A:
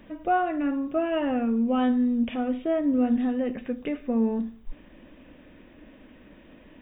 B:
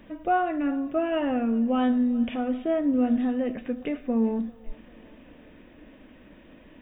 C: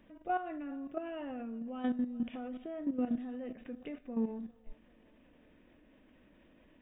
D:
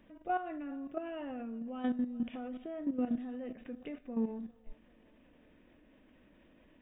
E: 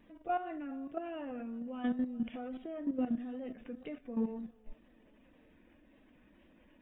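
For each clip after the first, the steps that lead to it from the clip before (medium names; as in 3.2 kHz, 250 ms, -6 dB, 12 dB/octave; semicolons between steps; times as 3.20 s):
thinning echo 395 ms, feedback 70%, high-pass 270 Hz, level -22.5 dB
level held to a coarse grid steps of 11 dB; trim -8 dB
no audible change
coarse spectral quantiser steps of 15 dB; wow and flutter 40 cents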